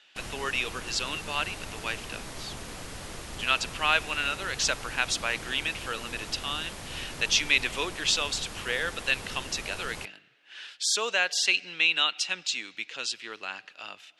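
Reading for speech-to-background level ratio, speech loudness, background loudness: 12.0 dB, -28.0 LUFS, -40.0 LUFS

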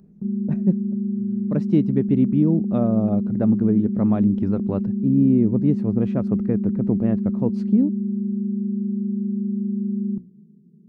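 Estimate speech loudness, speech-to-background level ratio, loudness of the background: -22.0 LUFS, 3.0 dB, -25.0 LUFS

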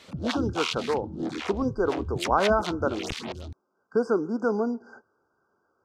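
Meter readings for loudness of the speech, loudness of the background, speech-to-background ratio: -28.0 LUFS, -33.0 LUFS, 5.0 dB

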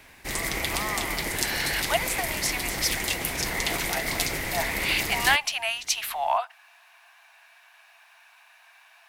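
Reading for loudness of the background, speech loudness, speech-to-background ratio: -28.0 LUFS, -28.5 LUFS, -0.5 dB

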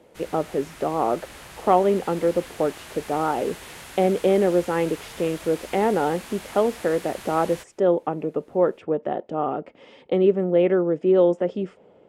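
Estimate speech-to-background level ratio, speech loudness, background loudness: 17.0 dB, -23.5 LUFS, -40.5 LUFS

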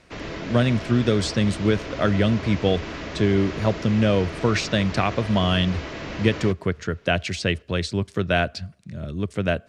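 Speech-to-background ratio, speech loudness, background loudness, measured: 10.5 dB, -23.0 LUFS, -33.5 LUFS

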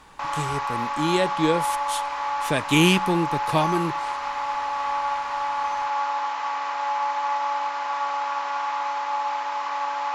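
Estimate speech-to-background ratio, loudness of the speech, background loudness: 2.0 dB, -24.5 LUFS, -26.5 LUFS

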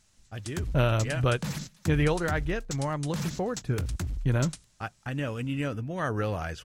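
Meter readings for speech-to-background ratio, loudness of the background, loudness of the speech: 7.5 dB, -37.5 LUFS, -30.0 LUFS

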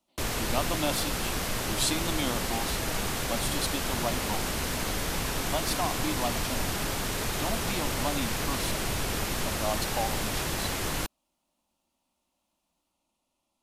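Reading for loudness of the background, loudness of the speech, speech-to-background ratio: -30.5 LUFS, -34.5 LUFS, -4.0 dB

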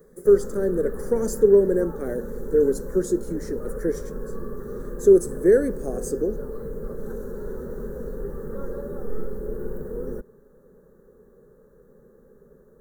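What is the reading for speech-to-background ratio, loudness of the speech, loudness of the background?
12.5 dB, -22.0 LUFS, -34.5 LUFS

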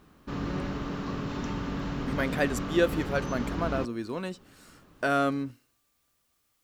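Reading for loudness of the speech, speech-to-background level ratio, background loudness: -30.5 LUFS, 3.5 dB, -34.0 LUFS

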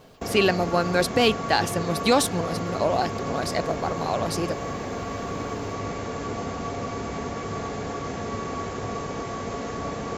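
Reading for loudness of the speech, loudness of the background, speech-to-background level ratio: -24.5 LUFS, -31.0 LUFS, 6.5 dB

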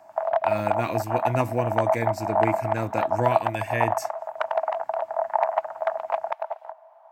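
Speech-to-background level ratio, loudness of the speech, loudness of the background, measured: -2.5 dB, -29.0 LUFS, -26.5 LUFS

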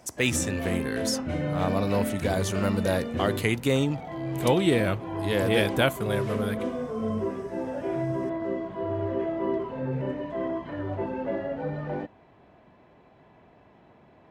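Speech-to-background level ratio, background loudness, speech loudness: 4.0 dB, -31.5 LUFS, -27.5 LUFS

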